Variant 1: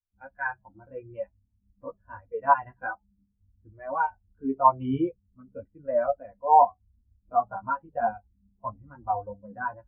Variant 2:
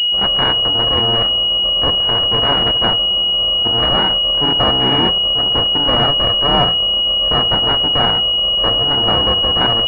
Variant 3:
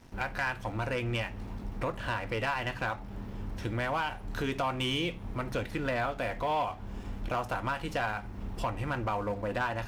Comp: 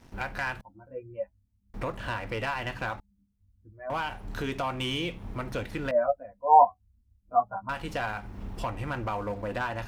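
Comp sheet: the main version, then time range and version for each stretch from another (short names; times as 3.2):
3
0.61–1.74 from 1
3–3.9 from 1
5.91–7.69 from 1
not used: 2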